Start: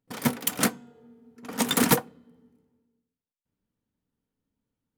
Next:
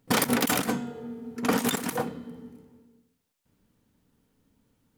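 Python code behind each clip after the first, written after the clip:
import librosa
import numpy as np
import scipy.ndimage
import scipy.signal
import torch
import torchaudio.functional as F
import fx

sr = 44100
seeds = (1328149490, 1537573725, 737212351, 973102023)

y = fx.over_compress(x, sr, threshold_db=-35.0, ratio=-1.0)
y = y * 10.0 ** (7.5 / 20.0)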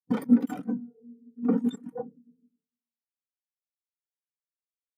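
y = fx.spectral_expand(x, sr, expansion=2.5)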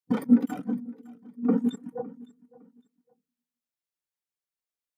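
y = fx.echo_feedback(x, sr, ms=559, feedback_pct=26, wet_db=-21)
y = y * 10.0 ** (1.0 / 20.0)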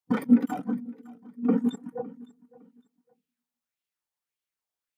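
y = fx.bell_lfo(x, sr, hz=1.7, low_hz=760.0, high_hz=3000.0, db=8)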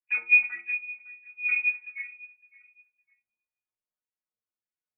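y = fx.cheby_harmonics(x, sr, harmonics=(4,), levels_db=(-29,), full_scale_db=-8.0)
y = fx.freq_invert(y, sr, carrier_hz=2700)
y = fx.stiff_resonator(y, sr, f0_hz=110.0, decay_s=0.4, stiffness=0.008)
y = y * 10.0 ** (3.0 / 20.0)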